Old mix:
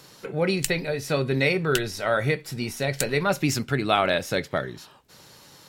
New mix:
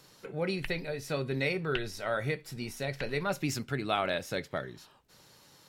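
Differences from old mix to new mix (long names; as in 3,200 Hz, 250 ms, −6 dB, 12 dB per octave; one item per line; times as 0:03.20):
speech −8.5 dB
background: add low-pass filter 2,500 Hz 24 dB per octave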